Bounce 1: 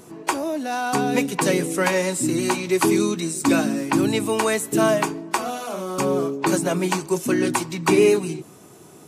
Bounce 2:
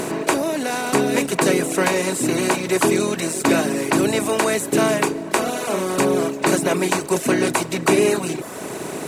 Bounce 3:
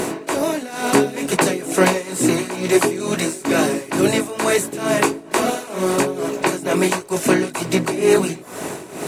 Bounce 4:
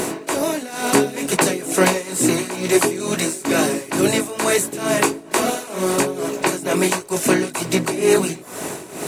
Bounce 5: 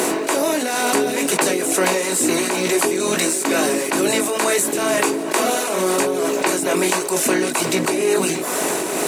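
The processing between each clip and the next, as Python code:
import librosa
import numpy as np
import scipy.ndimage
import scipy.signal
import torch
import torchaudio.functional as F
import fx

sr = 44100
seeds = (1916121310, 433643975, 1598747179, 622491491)

y1 = fx.bin_compress(x, sr, power=0.4)
y1 = fx.dereverb_blind(y1, sr, rt60_s=1.0)
y1 = np.sign(y1) * np.maximum(np.abs(y1) - 10.0 ** (-45.0 / 20.0), 0.0)
y1 = y1 * 10.0 ** (-1.5 / 20.0)
y2 = y1 * (1.0 - 0.81 / 2.0 + 0.81 / 2.0 * np.cos(2.0 * np.pi * 2.2 * (np.arange(len(y1)) / sr)))
y2 = fx.chorus_voices(y2, sr, voices=4, hz=1.4, base_ms=19, depth_ms=3.0, mix_pct=35)
y2 = y2 + 10.0 ** (-22.5 / 20.0) * np.pad(y2, (int(925 * sr / 1000.0), 0))[:len(y2)]
y2 = y2 * 10.0 ** (6.5 / 20.0)
y3 = fx.high_shelf(y2, sr, hz=4400.0, db=5.0)
y3 = y3 * 10.0 ** (-1.0 / 20.0)
y4 = scipy.signal.sosfilt(scipy.signal.butter(2, 260.0, 'highpass', fs=sr, output='sos'), y3)
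y4 = fx.env_flatten(y4, sr, amount_pct=70)
y4 = y4 * 10.0 ** (-4.0 / 20.0)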